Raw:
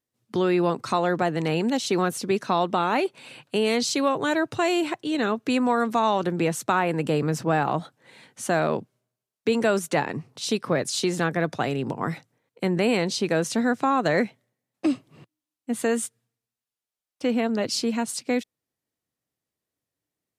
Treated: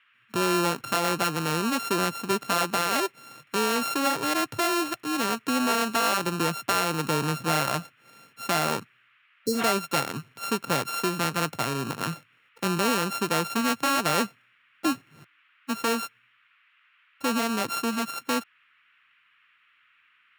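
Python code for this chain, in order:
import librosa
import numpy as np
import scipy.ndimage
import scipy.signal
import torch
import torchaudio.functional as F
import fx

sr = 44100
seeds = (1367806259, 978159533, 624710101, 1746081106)

y = np.r_[np.sort(x[:len(x) // 32 * 32].reshape(-1, 32), axis=1).ravel(), x[len(x) // 32 * 32:]]
y = fx.spec_repair(y, sr, seeds[0], start_s=9.37, length_s=0.24, low_hz=560.0, high_hz=4000.0, source='both')
y = fx.dmg_noise_band(y, sr, seeds[1], low_hz=1200.0, high_hz=2900.0, level_db=-61.0)
y = y * 10.0 ** (-2.5 / 20.0)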